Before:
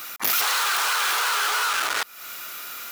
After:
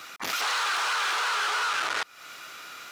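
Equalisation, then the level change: air absorption 92 m; high shelf 11000 Hz +8.5 dB; -2.5 dB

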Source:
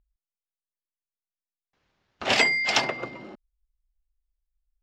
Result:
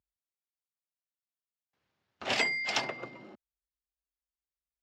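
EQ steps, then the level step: HPF 70 Hz 24 dB/oct; -8.0 dB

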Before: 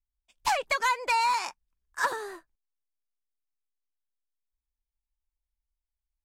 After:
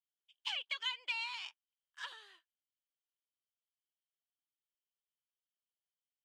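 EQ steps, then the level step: band-pass 3100 Hz, Q 12; +7.0 dB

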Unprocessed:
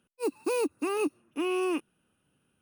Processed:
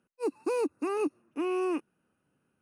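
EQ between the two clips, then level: air absorption 56 m; low shelf 89 Hz -10 dB; bell 3300 Hz -11.5 dB 0.64 oct; 0.0 dB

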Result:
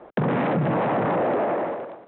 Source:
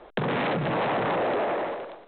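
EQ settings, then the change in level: BPF 140–2500 Hz; tilt -2.5 dB/oct; bell 410 Hz -3 dB 0.43 oct; +2.0 dB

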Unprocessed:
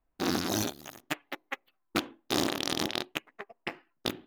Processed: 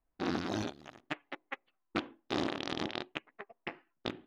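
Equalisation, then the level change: LPF 3200 Hz 12 dB/oct; -4.0 dB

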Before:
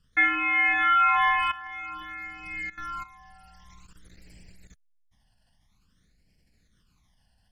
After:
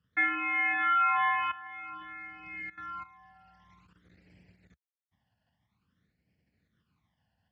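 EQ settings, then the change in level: HPF 78 Hz 24 dB/oct; LPF 2600 Hz 12 dB/oct; -4.5 dB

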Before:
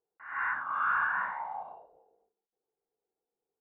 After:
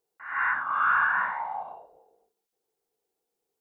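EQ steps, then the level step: high shelf 3000 Hz +6.5 dB; +4.5 dB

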